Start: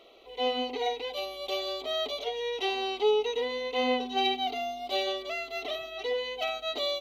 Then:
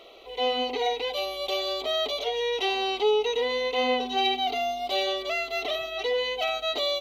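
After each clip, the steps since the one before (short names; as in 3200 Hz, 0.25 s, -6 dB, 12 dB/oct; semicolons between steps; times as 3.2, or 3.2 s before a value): bell 240 Hz -4.5 dB 1.1 oct; in parallel at +1.5 dB: limiter -28 dBFS, peak gain reduction 11.5 dB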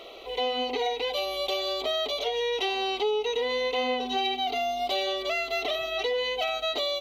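compressor 3:1, threshold -32 dBFS, peak gain reduction 9.5 dB; gain +5 dB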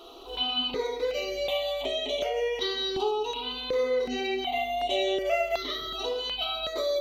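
reverb RT60 0.75 s, pre-delay 3 ms, DRR 1 dB; step phaser 2.7 Hz 570–4800 Hz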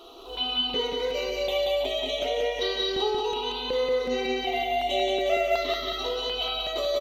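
feedback echo 0.182 s, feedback 46%, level -3.5 dB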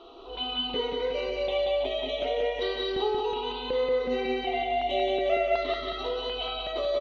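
air absorption 230 m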